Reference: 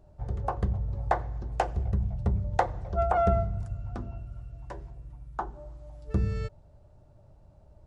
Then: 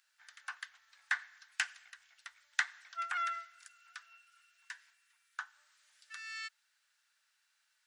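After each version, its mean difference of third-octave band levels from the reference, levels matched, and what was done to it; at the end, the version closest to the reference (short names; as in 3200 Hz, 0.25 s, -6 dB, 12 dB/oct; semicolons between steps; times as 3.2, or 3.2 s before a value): 18.5 dB: elliptic high-pass 1600 Hz, stop band 80 dB; gain +8 dB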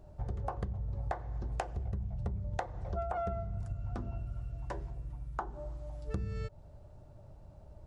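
5.0 dB: compressor 6:1, threshold -36 dBFS, peak gain reduction 16.5 dB; gain +2.5 dB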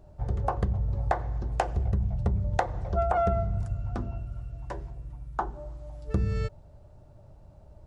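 2.0 dB: compressor 4:1, threshold -26 dBFS, peak gain reduction 7.5 dB; gain +4 dB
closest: third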